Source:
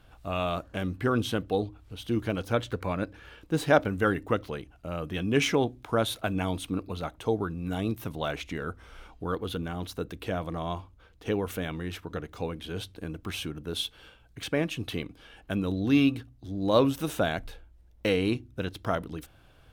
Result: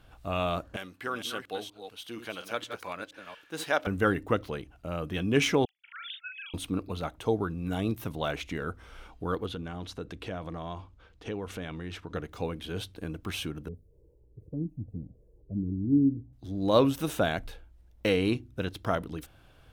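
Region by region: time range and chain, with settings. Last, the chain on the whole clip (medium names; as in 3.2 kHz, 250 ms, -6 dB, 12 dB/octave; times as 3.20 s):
0.76–3.87 s: chunks repeated in reverse 235 ms, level -8 dB + high-pass 1.3 kHz 6 dB/octave
5.65–6.54 s: formants replaced by sine waves + steep high-pass 1.8 kHz + doubling 40 ms -4 dB
9.46–12.15 s: low-pass 7.4 kHz + compression 2:1, threshold -36 dBFS
13.68–16.33 s: zero-crossing glitches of -20 dBFS + inverse Chebyshev low-pass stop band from 1.3 kHz, stop band 60 dB + touch-sensitive flanger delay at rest 2.2 ms, full sweep at -18.5 dBFS
whole clip: none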